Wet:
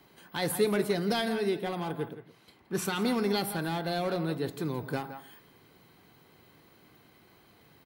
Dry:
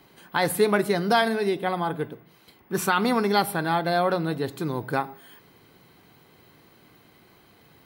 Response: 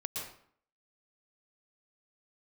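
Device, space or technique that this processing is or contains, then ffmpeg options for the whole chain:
one-band saturation: -filter_complex "[0:a]asettb=1/sr,asplit=3[a][b][c];[a]atrim=end=2.134[d];[b]atrim=start=2.13:end=2.85,asetpts=PTS-STARTPTS,afade=t=in:d=0.004:c=qsin,afade=t=out:st=0.716:d=0.004:c=qsin,lowpass=11k[e];[c]atrim=start=2.846[f];[d][e]acrossfade=d=0.004:c1=hsin:c2=qsin[g];[g][f]acrossfade=d=0.004:c1=qsin:c2=hsin,asplit=2[h][i];[i]adelay=169.1,volume=-14dB,highshelf=f=4k:g=-3.8[j];[h][j]amix=inputs=2:normalize=0,acrossover=split=530|2000[k][l][m];[l]asoftclip=type=tanh:threshold=-34dB[n];[k][n][m]amix=inputs=3:normalize=0,volume=-4dB"

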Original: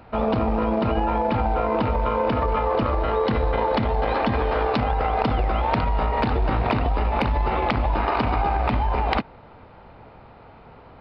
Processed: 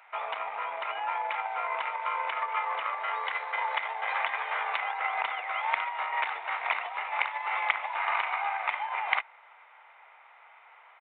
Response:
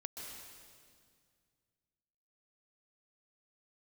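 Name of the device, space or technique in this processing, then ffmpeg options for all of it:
musical greeting card: -af "aresample=8000,aresample=44100,highpass=f=860:w=0.5412,highpass=f=860:w=1.3066,equalizer=f=2.1k:t=o:w=0.34:g=11,volume=-4dB"

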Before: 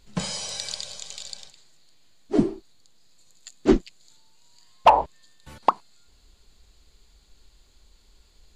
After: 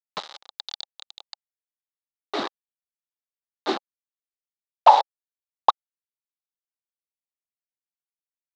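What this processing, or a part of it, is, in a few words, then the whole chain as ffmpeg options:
hand-held game console: -af "acrusher=bits=3:mix=0:aa=0.000001,highpass=470,equalizer=f=560:t=q:w=4:g=4,equalizer=f=820:t=q:w=4:g=9,equalizer=f=1.2k:t=q:w=4:g=6,equalizer=f=2.5k:t=q:w=4:g=-4,equalizer=f=3.8k:t=q:w=4:g=10,lowpass=f=5.1k:w=0.5412,lowpass=f=5.1k:w=1.3066,volume=-4.5dB"

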